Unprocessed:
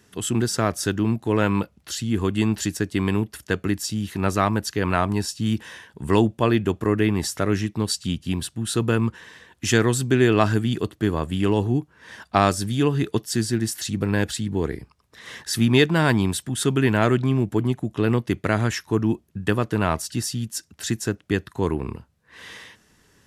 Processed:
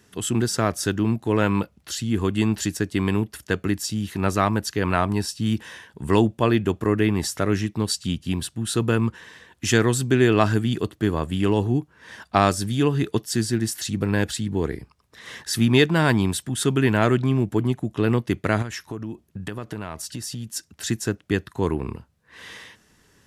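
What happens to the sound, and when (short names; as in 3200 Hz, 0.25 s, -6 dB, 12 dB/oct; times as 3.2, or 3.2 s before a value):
4.89–5.51 notch 6800 Hz, Q 13
18.62–20.56 compressor 5:1, threshold -28 dBFS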